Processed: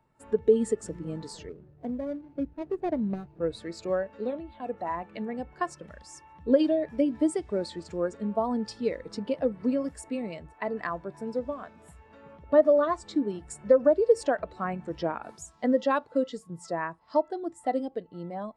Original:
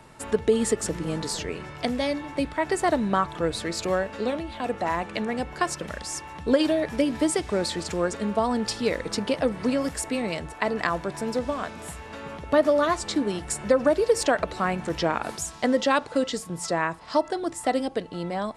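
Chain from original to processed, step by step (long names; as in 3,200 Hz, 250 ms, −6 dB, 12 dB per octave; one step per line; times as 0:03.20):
0:01.49–0:03.41: running median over 41 samples
every bin expanded away from the loudest bin 1.5 to 1
level −2 dB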